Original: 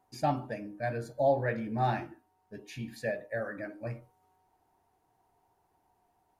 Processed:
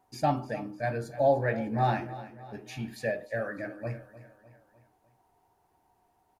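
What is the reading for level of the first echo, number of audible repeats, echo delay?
-16.0 dB, 4, 0.302 s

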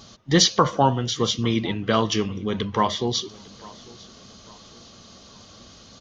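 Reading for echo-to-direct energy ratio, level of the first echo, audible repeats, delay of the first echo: -21.5 dB, -22.5 dB, 2, 0.85 s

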